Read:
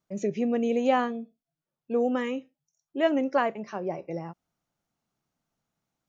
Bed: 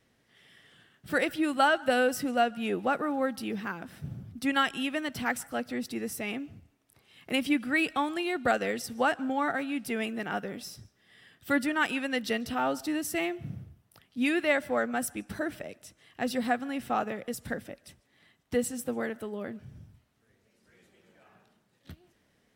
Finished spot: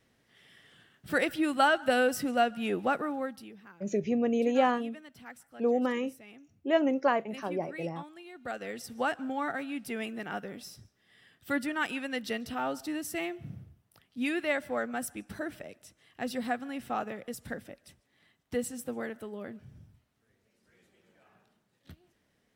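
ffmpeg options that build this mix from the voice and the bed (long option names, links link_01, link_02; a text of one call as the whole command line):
ffmpeg -i stem1.wav -i stem2.wav -filter_complex "[0:a]adelay=3700,volume=-1.5dB[link_01];[1:a]volume=13dB,afade=type=out:start_time=2.9:duration=0.64:silence=0.141254,afade=type=in:start_time=8.34:duration=0.66:silence=0.211349[link_02];[link_01][link_02]amix=inputs=2:normalize=0" out.wav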